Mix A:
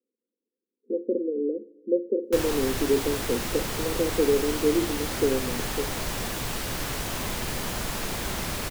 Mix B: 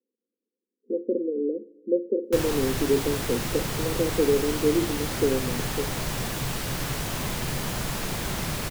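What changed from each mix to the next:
master: add peaking EQ 140 Hz +8 dB 0.63 oct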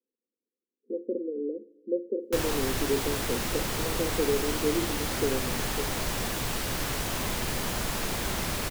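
speech -5.0 dB; master: add peaking EQ 140 Hz -8 dB 0.63 oct

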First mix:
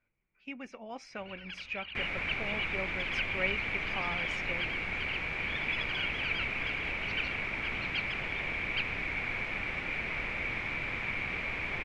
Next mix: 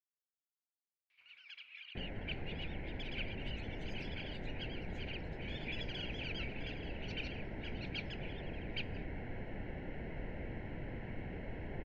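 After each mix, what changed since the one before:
speech: muted; first sound: add differentiator; second sound: add boxcar filter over 37 samples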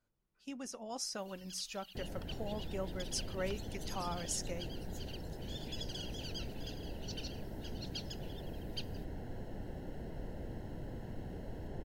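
speech: unmuted; master: remove resonant low-pass 2.3 kHz, resonance Q 11

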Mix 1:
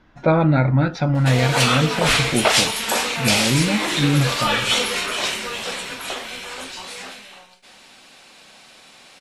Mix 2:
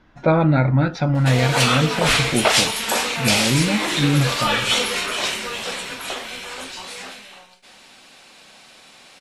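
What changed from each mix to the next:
no change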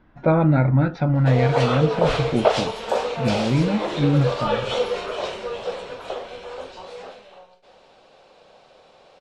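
background: add graphic EQ 250/500/2000 Hz -10/+10/-8 dB; master: add tape spacing loss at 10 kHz 26 dB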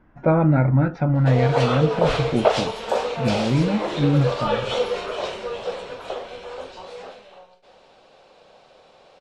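speech: add peaking EQ 3.9 kHz -10.5 dB 0.74 oct

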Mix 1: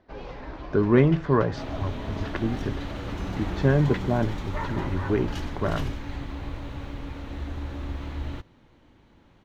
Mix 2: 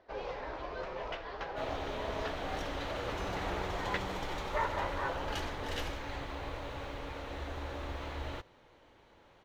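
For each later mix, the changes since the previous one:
speech: muted; master: add resonant low shelf 350 Hz -9 dB, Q 1.5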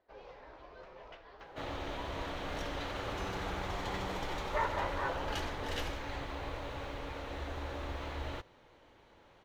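first sound -12.0 dB

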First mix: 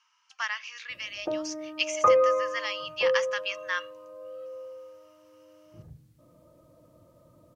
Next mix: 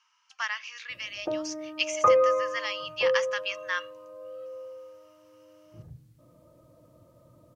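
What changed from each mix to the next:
master: add peaking EQ 120 Hz +5.5 dB 0.21 oct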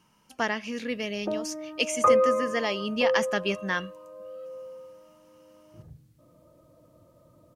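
speech: remove elliptic band-pass 1.1–6.2 kHz, stop band 70 dB; master: add peaking EQ 120 Hz -5.5 dB 0.21 oct

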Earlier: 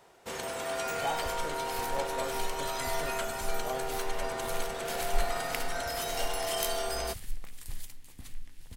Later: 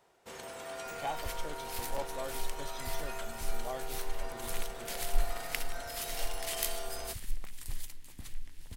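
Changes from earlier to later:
first sound -8.0 dB; second sound +3.5 dB; reverb: off

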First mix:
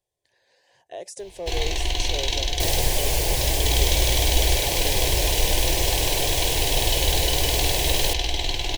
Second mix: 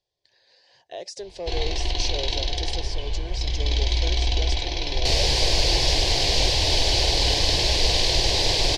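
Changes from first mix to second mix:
first sound: add treble shelf 2.1 kHz -11 dB; second sound: entry +2.45 s; master: add resonant low-pass 4.7 kHz, resonance Q 3.4

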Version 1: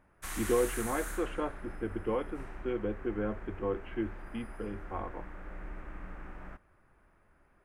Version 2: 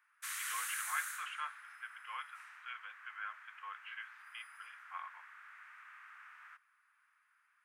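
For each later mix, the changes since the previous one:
speech +3.5 dB; master: add steep high-pass 1.2 kHz 36 dB/octave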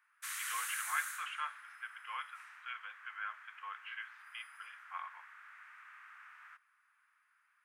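speech: send +11.5 dB

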